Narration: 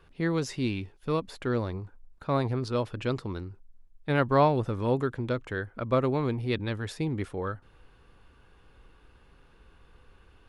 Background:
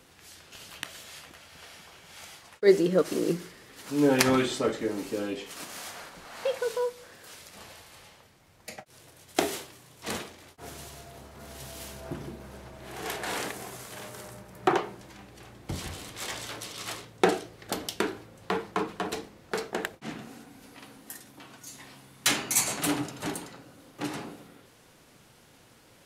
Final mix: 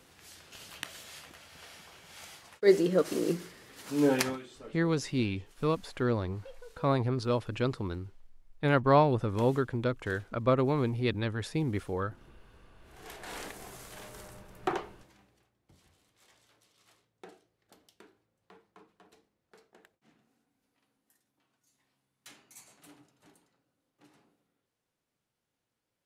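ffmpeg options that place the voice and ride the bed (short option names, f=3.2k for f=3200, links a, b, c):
-filter_complex "[0:a]adelay=4550,volume=-0.5dB[a];[1:a]volume=13dB,afade=t=out:st=4.08:d=0.31:silence=0.11885,afade=t=in:st=12.79:d=0.99:silence=0.16788,afade=t=out:st=14.45:d=1.05:silence=0.0707946[b];[a][b]amix=inputs=2:normalize=0"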